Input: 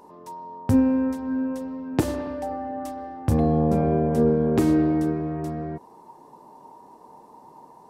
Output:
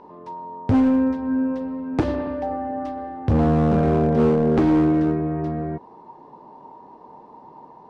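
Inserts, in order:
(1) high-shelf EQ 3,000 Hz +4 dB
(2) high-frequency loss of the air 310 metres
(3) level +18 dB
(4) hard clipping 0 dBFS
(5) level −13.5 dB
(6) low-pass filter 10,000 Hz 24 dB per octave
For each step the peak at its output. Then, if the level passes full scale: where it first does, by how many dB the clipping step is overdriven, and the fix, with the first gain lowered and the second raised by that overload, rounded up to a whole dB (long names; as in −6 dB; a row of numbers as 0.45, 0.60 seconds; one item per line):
−6.5, −8.5, +9.5, 0.0, −13.5, −13.0 dBFS
step 3, 9.5 dB
step 3 +8 dB, step 5 −3.5 dB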